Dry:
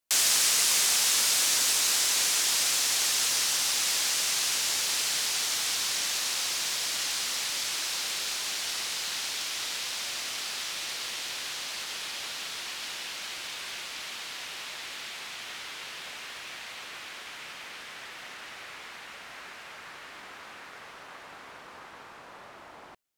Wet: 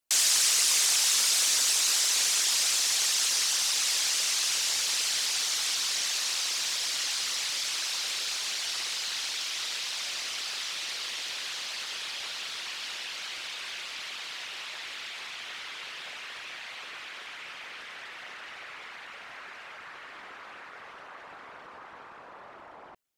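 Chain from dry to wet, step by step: resonances exaggerated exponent 1.5

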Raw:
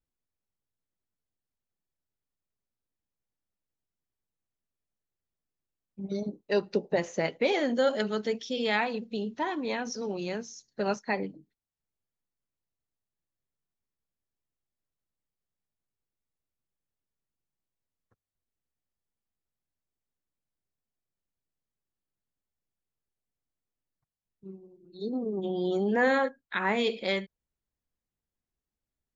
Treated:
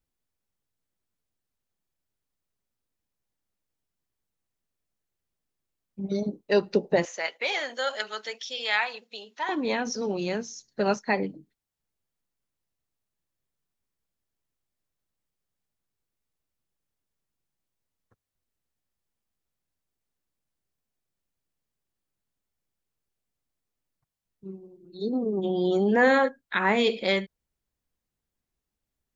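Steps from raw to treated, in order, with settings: 7.05–9.49 s: high-pass 1 kHz 12 dB/octave; trim +4.5 dB

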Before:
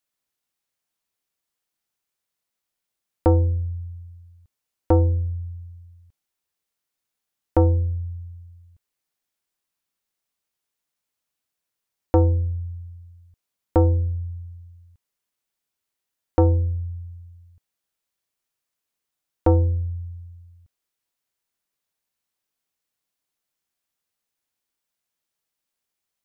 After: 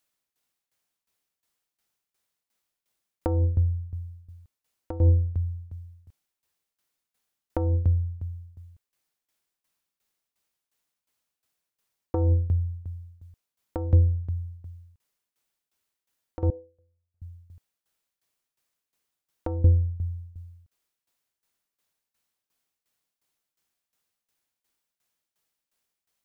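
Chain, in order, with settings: compressor with a negative ratio -19 dBFS, ratio -0.5; 16.50–17.22 s: ladder band-pass 590 Hz, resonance 50%; tremolo saw down 2.8 Hz, depth 85%; trim +3.5 dB

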